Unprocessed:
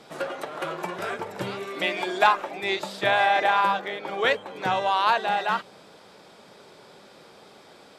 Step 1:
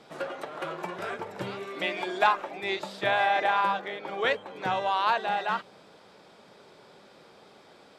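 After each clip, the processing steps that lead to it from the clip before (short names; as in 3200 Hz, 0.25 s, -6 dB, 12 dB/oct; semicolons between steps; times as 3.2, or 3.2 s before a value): high shelf 7000 Hz -7 dB; gain -3.5 dB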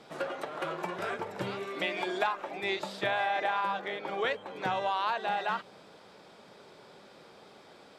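compressor 4:1, threshold -27 dBFS, peak gain reduction 9 dB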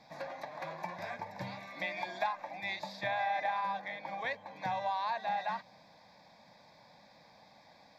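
fixed phaser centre 2000 Hz, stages 8; gain -2 dB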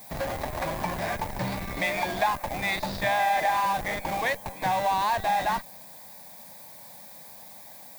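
in parallel at -3 dB: Schmitt trigger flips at -41.5 dBFS; on the sum: added noise violet -54 dBFS; gain +7 dB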